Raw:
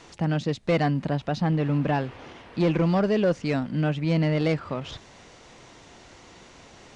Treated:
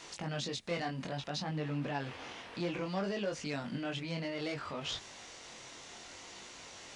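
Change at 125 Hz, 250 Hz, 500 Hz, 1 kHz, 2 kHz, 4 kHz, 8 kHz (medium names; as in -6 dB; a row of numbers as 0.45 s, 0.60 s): -16.0 dB, -14.0 dB, -12.5 dB, -10.5 dB, -7.5 dB, -1.5 dB, no reading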